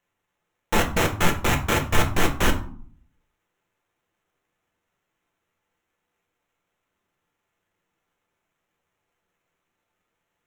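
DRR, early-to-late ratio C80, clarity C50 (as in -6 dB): 2.0 dB, 16.5 dB, 11.5 dB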